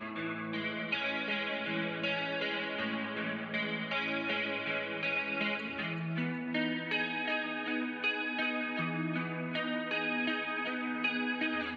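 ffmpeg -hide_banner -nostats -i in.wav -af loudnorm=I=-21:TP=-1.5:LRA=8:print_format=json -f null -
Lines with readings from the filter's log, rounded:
"input_i" : "-33.6",
"input_tp" : "-19.2",
"input_lra" : "0.5",
"input_thresh" : "-43.6",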